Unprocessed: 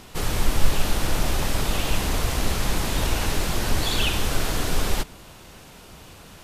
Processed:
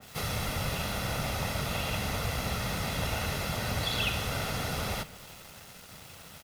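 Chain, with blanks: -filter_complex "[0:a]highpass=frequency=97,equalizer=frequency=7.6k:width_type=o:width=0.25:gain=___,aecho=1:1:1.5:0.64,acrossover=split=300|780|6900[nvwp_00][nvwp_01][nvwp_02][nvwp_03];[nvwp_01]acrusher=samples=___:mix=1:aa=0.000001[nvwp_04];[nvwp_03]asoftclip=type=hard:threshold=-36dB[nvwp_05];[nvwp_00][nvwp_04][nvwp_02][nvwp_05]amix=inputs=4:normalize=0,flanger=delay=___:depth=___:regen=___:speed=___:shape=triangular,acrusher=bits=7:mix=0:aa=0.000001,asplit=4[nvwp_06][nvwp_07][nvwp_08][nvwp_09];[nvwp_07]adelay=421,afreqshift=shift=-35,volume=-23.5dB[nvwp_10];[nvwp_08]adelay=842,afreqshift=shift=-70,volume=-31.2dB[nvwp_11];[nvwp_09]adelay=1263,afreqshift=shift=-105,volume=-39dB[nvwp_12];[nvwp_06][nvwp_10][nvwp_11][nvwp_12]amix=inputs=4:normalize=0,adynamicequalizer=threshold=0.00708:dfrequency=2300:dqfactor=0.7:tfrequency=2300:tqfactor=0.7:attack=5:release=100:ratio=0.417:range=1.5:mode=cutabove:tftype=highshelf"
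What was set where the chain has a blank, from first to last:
-7, 29, 8.3, 4.2, -90, 0.85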